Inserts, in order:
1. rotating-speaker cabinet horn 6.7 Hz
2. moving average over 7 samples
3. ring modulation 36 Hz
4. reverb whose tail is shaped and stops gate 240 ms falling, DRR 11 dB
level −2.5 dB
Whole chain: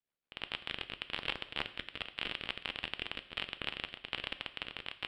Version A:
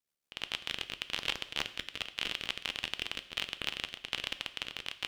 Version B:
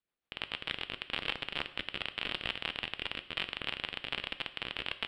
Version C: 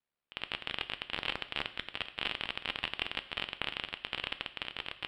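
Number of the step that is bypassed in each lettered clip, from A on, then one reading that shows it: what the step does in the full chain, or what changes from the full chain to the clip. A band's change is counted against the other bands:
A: 2, 4 kHz band +4.0 dB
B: 3, change in momentary loudness spread −1 LU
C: 1, 1 kHz band +1.5 dB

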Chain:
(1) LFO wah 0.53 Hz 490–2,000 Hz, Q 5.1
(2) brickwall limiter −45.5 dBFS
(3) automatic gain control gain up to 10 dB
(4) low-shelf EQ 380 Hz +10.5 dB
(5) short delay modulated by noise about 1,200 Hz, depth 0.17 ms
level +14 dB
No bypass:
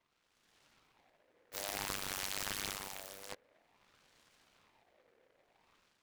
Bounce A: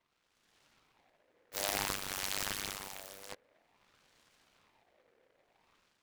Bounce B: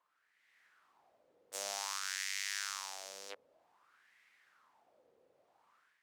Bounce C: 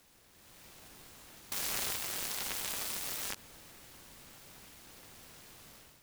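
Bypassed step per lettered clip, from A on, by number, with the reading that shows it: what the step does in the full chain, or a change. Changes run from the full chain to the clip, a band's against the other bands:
2, change in crest factor +3.5 dB
5, 250 Hz band −17.5 dB
1, change in momentary loudness spread +7 LU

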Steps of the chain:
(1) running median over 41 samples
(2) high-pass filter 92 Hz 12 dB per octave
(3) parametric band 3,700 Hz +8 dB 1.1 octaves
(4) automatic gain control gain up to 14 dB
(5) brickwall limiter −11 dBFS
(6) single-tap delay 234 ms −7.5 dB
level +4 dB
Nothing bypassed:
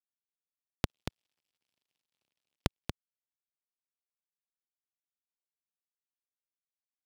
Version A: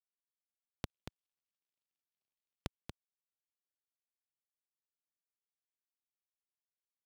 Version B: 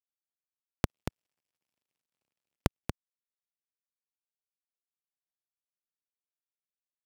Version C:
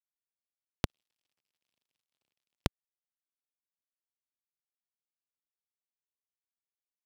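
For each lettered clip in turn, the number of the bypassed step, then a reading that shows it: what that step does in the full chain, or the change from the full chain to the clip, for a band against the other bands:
4, change in integrated loudness −10.5 LU
3, 4 kHz band −6.5 dB
6, change in integrated loudness +1.0 LU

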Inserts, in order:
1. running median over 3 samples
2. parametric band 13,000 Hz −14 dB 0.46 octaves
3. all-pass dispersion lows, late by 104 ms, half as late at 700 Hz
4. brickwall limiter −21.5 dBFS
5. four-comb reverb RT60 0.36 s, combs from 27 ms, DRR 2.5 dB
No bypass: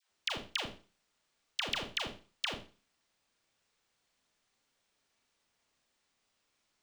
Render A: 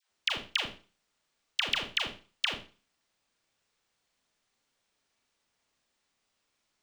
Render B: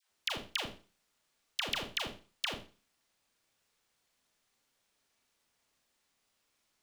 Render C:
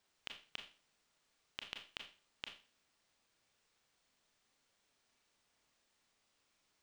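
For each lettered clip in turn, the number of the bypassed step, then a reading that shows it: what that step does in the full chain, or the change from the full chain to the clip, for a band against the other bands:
4, average gain reduction 1.5 dB
2, 8 kHz band +1.5 dB
3, 2 kHz band +5.0 dB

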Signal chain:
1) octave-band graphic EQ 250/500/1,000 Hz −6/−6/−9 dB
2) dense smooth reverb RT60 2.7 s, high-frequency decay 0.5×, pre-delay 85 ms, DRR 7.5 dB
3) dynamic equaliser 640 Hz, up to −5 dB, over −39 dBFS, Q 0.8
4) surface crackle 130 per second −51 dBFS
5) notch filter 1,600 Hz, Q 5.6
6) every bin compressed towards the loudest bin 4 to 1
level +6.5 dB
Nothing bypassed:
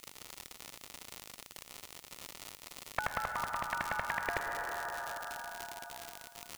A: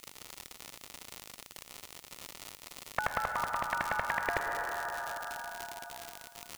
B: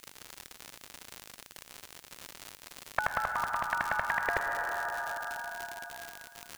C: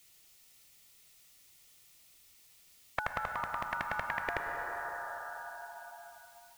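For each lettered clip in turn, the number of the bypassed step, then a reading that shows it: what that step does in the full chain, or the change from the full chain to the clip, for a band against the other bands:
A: 3, change in momentary loudness spread +2 LU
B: 5, change in momentary loudness spread +4 LU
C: 4, 8 kHz band −10.0 dB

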